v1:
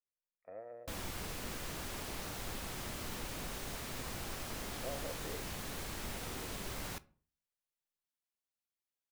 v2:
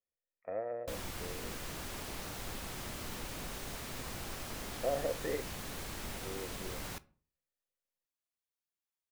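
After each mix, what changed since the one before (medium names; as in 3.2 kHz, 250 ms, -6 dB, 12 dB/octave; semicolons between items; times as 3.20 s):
speech +10.5 dB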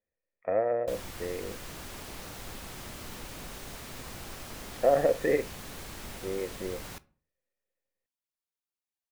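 speech +11.0 dB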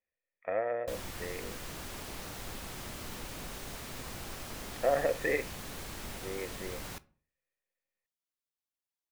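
speech: add tilt shelf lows -8 dB, about 1.3 kHz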